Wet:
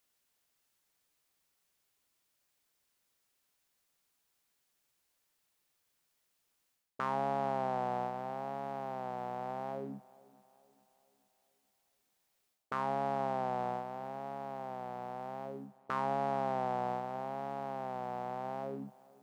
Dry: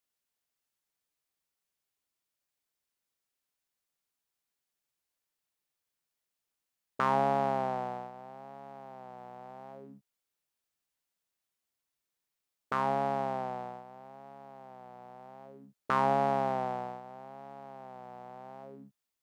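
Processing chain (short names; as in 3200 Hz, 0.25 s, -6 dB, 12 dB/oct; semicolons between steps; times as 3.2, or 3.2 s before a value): reverse; compressor 5:1, threshold -39 dBFS, peak gain reduction 15.5 dB; reverse; tape echo 0.433 s, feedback 51%, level -22.5 dB, low-pass 4600 Hz; gain +8 dB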